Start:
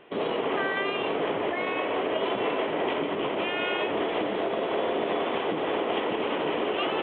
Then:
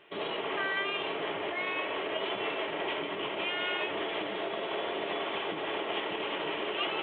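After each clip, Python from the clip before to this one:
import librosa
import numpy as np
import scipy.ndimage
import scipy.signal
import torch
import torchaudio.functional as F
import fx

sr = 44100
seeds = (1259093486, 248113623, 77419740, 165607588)

y = fx.tilt_shelf(x, sr, db=-5.5, hz=1200.0)
y = fx.notch_comb(y, sr, f0_hz=250.0)
y = y * librosa.db_to_amplitude(-3.0)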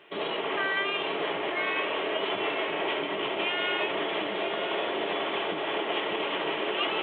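y = scipy.signal.sosfilt(scipy.signal.butter(2, 120.0, 'highpass', fs=sr, output='sos'), x)
y = y + 10.0 ** (-8.5 / 20.0) * np.pad(y, (int(989 * sr / 1000.0), 0))[:len(y)]
y = y * librosa.db_to_amplitude(3.5)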